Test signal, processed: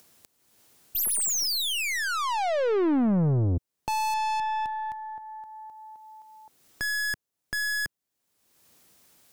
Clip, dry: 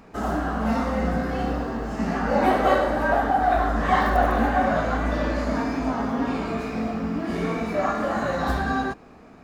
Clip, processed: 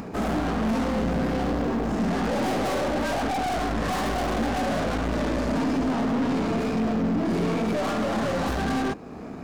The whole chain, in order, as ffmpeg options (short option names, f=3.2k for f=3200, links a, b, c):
-af "aeval=exprs='(tanh(50.1*val(0)+0.7)-tanh(0.7))/50.1':c=same,bass=f=250:g=-6,treble=f=4k:g=4,acompressor=mode=upward:threshold=-43dB:ratio=2.5,equalizer=f=140:w=0.31:g=13.5,volume=4.5dB"